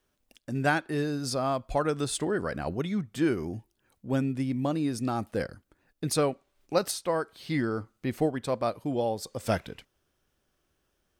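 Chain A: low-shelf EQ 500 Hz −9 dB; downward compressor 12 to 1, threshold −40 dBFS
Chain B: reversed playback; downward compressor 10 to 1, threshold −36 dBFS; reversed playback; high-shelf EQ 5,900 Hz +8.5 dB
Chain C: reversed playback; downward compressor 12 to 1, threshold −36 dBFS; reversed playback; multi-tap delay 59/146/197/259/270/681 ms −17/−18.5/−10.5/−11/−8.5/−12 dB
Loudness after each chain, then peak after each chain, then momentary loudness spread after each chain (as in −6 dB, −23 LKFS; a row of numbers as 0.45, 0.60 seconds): −45.0, −40.0, −40.0 LKFS; −28.0, −20.5, −25.5 dBFS; 8, 9, 8 LU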